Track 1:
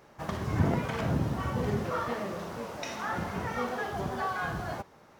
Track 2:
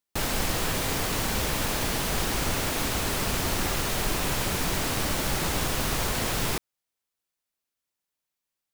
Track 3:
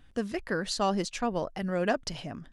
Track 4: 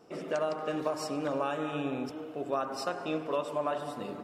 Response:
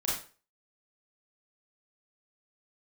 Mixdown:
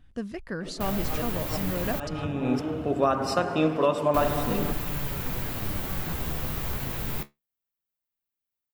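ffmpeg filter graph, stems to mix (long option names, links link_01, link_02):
-filter_complex "[0:a]adelay=1650,volume=-15.5dB[link_01];[1:a]equalizer=frequency=8300:width=1.1:gain=-10,aexciter=amount=2.6:drive=5.1:freq=7300,flanger=delay=6.7:depth=7.9:regen=59:speed=0.24:shape=sinusoidal,adelay=650,volume=-4dB,asplit=3[link_02][link_03][link_04];[link_02]atrim=end=2,asetpts=PTS-STARTPTS,afade=type=out:start_time=1.996:duration=0.004:curve=hsin[link_05];[link_03]atrim=start=2:end=4.14,asetpts=PTS-STARTPTS,volume=0[link_06];[link_04]atrim=start=4.14,asetpts=PTS-STARTPTS,afade=type=in:duration=0.004:curve=hsin[link_07];[link_05][link_06][link_07]concat=n=3:v=0:a=1[link_08];[2:a]volume=-5dB,asplit=2[link_09][link_10];[3:a]acontrast=85,adelay=500,volume=1dB[link_11];[link_10]apad=whole_len=208971[link_12];[link_11][link_12]sidechaincompress=threshold=-51dB:ratio=12:attack=20:release=108[link_13];[link_01][link_08][link_09][link_13]amix=inputs=4:normalize=0,bass=frequency=250:gain=7,treble=frequency=4000:gain=-2"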